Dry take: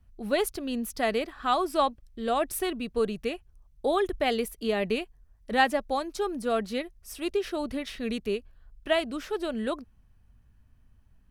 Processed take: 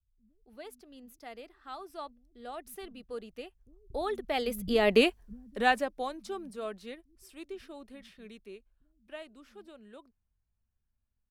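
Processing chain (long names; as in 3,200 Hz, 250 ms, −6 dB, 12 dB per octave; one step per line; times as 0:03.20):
source passing by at 0:04.80, 16 m/s, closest 2.9 metres
multiband delay without the direct sound lows, highs 280 ms, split 170 Hz
level +8 dB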